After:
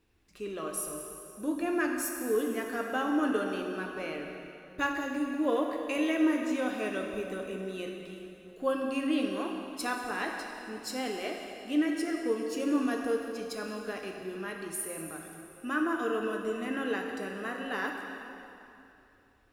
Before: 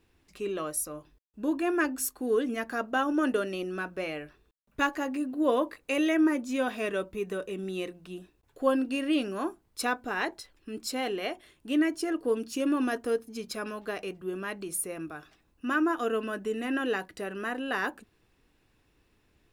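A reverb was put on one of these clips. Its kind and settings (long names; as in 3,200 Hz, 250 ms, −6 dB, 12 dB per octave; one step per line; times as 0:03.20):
dense smooth reverb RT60 2.9 s, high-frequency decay 0.85×, DRR 1.5 dB
level −4.5 dB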